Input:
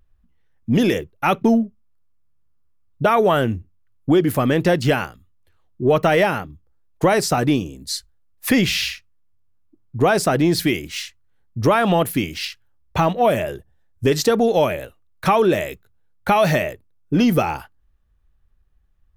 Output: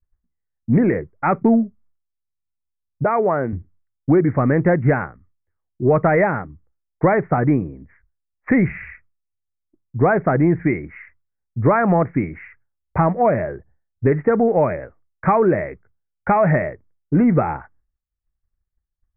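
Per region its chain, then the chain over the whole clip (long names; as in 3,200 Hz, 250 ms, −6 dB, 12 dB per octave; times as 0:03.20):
0:03.04–0:03.53: high-pass filter 320 Hz 6 dB per octave + parametric band 1,600 Hz −5 dB 1.2 octaves
whole clip: Butterworth low-pass 2,200 Hz 96 dB per octave; downward expander −47 dBFS; dynamic equaliser 140 Hz, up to +4 dB, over −32 dBFS, Q 1.6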